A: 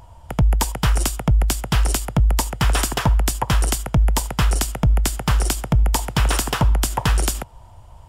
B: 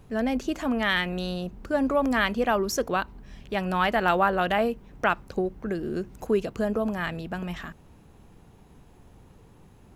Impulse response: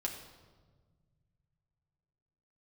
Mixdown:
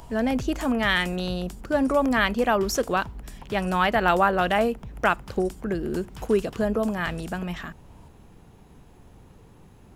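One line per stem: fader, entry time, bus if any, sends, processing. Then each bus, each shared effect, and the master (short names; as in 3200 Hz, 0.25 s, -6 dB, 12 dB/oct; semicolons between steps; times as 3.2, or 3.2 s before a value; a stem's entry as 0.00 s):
-16.0 dB, 0.00 s, no send, three-band squash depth 70%; auto duck -8 dB, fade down 1.55 s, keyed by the second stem
+2.0 dB, 0.00 s, no send, dry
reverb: off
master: dry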